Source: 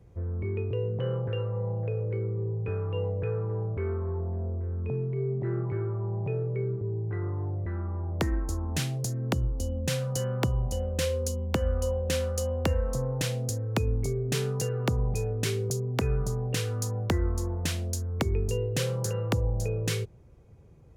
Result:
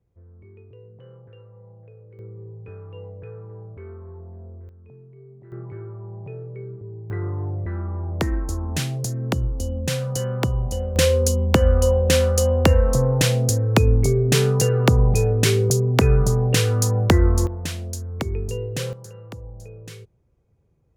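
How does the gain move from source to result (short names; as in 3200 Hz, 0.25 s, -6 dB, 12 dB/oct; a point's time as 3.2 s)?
-16 dB
from 2.19 s -8 dB
from 4.69 s -16 dB
from 5.52 s -5 dB
from 7.1 s +4.5 dB
from 10.96 s +11 dB
from 17.47 s +1 dB
from 18.93 s -10.5 dB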